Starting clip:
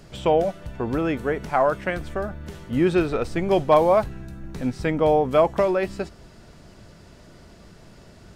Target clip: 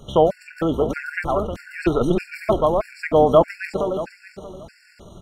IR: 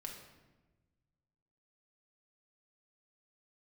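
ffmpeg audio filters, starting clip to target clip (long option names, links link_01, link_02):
-filter_complex "[0:a]aecho=1:1:500|1000|1500|2000|2500:0.473|0.199|0.0835|0.0351|0.0147,asplit=2[link_01][link_02];[1:a]atrim=start_sample=2205[link_03];[link_02][link_03]afir=irnorm=-1:irlink=0,volume=-12dB[link_04];[link_01][link_04]amix=inputs=2:normalize=0,atempo=1.6,afftfilt=real='re*gt(sin(2*PI*1.6*pts/sr)*(1-2*mod(floor(b*sr/1024/1400),2)),0)':imag='im*gt(sin(2*PI*1.6*pts/sr)*(1-2*mod(floor(b*sr/1024/1400),2)),0)':win_size=1024:overlap=0.75,volume=3.5dB"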